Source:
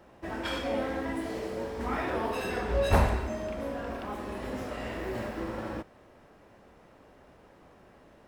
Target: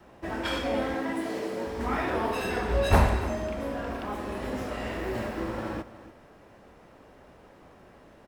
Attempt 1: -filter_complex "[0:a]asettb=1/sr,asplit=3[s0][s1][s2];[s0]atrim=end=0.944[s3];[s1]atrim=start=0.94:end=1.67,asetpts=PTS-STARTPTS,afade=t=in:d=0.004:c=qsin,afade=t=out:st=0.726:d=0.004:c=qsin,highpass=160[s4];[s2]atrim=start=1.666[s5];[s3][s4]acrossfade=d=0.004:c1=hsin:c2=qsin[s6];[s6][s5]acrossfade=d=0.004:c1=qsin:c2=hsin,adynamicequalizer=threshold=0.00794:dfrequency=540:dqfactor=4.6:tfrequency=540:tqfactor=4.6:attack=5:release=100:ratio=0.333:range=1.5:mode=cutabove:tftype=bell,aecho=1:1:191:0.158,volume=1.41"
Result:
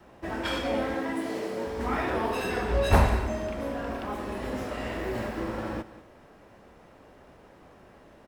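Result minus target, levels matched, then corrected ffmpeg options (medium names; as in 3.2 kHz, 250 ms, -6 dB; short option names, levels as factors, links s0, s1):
echo 98 ms early
-filter_complex "[0:a]asettb=1/sr,asplit=3[s0][s1][s2];[s0]atrim=end=0.944[s3];[s1]atrim=start=0.94:end=1.67,asetpts=PTS-STARTPTS,afade=t=in:d=0.004:c=qsin,afade=t=out:st=0.726:d=0.004:c=qsin,highpass=160[s4];[s2]atrim=start=1.666[s5];[s3][s4]acrossfade=d=0.004:c1=hsin:c2=qsin[s6];[s6][s5]acrossfade=d=0.004:c1=qsin:c2=hsin,adynamicequalizer=threshold=0.00794:dfrequency=540:dqfactor=4.6:tfrequency=540:tqfactor=4.6:attack=5:release=100:ratio=0.333:range=1.5:mode=cutabove:tftype=bell,aecho=1:1:289:0.158,volume=1.41"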